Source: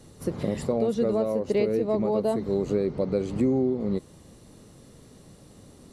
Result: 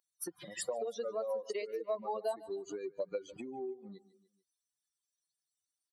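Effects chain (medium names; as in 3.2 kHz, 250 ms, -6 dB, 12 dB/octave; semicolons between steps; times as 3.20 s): expander on every frequency bin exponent 3; on a send: feedback delay 147 ms, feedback 44%, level -23 dB; on the sum: compression, threshold -38 dBFS, peak gain reduction 15 dB; high-pass 600 Hz 12 dB/octave; trim +9 dB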